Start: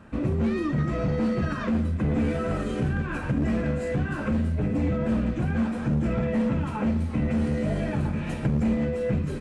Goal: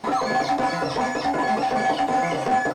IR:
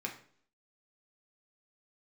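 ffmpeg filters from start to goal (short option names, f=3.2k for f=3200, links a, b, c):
-filter_complex "[0:a]aecho=1:1:125:0.398,asetrate=151263,aresample=44100,asplit=2[a][b];[b]adelay=13,volume=-4.5dB[c];[a][c]amix=inputs=2:normalize=0,acrossover=split=6700[d][e];[e]acompressor=threshold=-55dB:ratio=4:attack=1:release=60[f];[d][f]amix=inputs=2:normalize=0"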